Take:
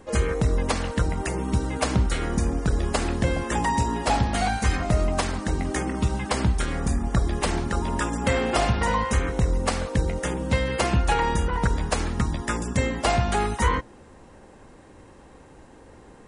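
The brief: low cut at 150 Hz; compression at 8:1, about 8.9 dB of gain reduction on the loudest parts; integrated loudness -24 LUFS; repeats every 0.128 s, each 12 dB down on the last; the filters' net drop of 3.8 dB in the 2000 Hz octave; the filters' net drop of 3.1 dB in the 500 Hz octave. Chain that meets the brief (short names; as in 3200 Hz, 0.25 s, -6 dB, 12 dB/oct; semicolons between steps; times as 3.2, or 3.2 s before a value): HPF 150 Hz; bell 500 Hz -3.5 dB; bell 2000 Hz -4.5 dB; compressor 8:1, threshold -31 dBFS; feedback echo 0.128 s, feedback 25%, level -12 dB; gain +11 dB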